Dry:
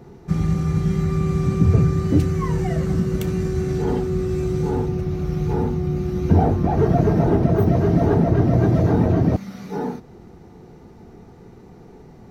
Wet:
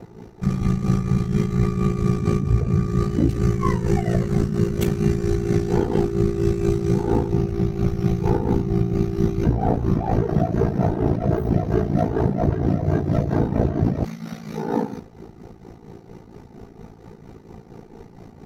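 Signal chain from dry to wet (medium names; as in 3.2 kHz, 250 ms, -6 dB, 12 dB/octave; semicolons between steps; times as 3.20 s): in parallel at +0.5 dB: compressor with a negative ratio -21 dBFS, ratio -0.5; on the sum: tremolo 6.5 Hz, depth 59%; time stretch by phase-locked vocoder 1.5×; ring modulator 28 Hz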